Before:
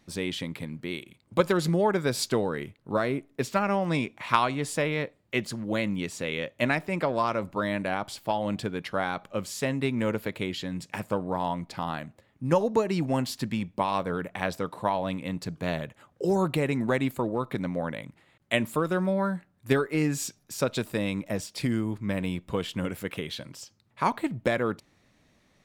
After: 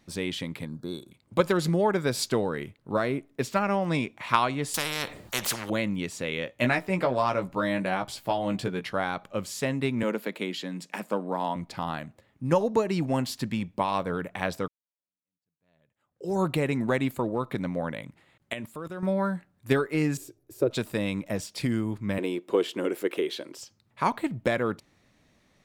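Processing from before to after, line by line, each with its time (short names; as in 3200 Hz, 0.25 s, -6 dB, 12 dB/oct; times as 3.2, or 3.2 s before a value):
0.67–1.12 spectral gain 1700–3400 Hz -23 dB
4.74–5.7 spectral compressor 4:1
6.45–8.93 doubler 16 ms -5 dB
10.03–11.56 steep high-pass 180 Hz
14.68–16.4 fade in exponential
18.53–19.03 level quantiser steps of 18 dB
20.17–20.71 EQ curve 130 Hz 0 dB, 200 Hz -20 dB, 330 Hz +12 dB, 830 Hz -9 dB, 5900 Hz -18 dB, 12000 Hz -6 dB
22.18–23.58 resonant high-pass 360 Hz, resonance Q 4.3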